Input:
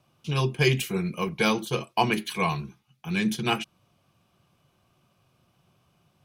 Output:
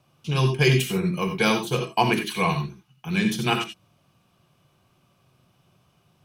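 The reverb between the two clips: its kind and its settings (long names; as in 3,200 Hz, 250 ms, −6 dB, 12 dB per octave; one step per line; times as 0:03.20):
reverb whose tail is shaped and stops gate 110 ms rising, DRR 6 dB
level +2 dB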